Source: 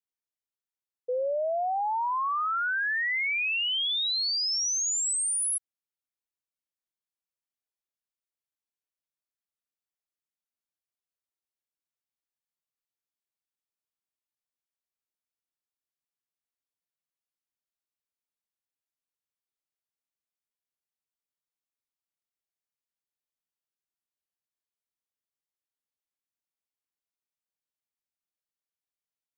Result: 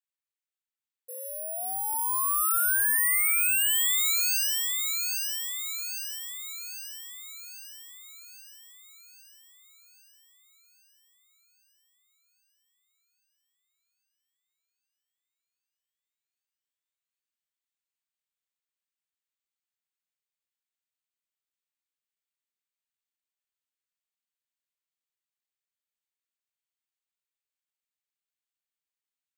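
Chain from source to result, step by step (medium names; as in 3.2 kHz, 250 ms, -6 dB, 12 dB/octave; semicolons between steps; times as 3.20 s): high-pass 1.2 kHz 12 dB/octave; tilt EQ +2 dB/octave; compression, threshold -26 dBFS, peak gain reduction 6 dB; distance through air 180 m; feedback echo behind a high-pass 807 ms, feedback 58%, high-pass 2.2 kHz, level -3.5 dB; careless resampling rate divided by 4×, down filtered, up zero stuff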